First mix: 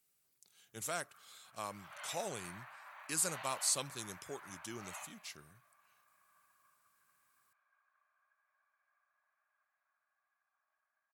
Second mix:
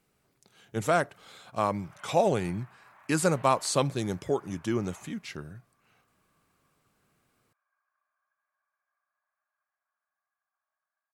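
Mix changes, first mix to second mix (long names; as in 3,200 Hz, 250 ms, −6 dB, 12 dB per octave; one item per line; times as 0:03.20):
speech: remove first-order pre-emphasis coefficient 0.9
background: add head-to-tape spacing loss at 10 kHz 28 dB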